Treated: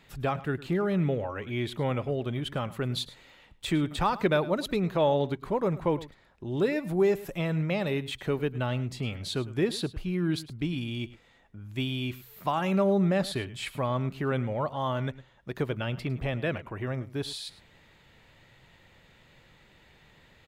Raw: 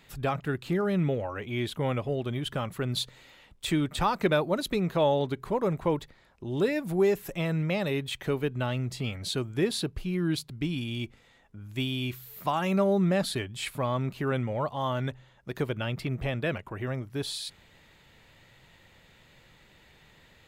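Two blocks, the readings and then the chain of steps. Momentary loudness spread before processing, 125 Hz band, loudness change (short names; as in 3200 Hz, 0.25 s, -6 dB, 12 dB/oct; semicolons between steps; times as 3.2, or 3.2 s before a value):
9 LU, 0.0 dB, 0.0 dB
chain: high shelf 5400 Hz -6 dB; on a send: echo 0.106 s -17.5 dB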